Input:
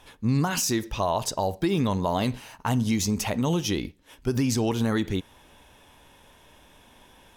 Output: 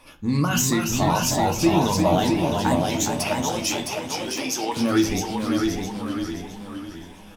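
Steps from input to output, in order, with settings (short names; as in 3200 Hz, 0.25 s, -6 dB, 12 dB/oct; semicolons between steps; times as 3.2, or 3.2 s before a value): moving spectral ripple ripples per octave 0.95, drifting +2.5 Hz, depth 11 dB; 2.75–4.77 HPF 540 Hz 12 dB/oct; reverb RT60 0.45 s, pre-delay 3 ms, DRR 3.5 dB; echoes that change speed 0.254 s, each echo -1 st, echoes 2, each echo -6 dB; feedback echo 0.662 s, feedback 32%, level -4.5 dB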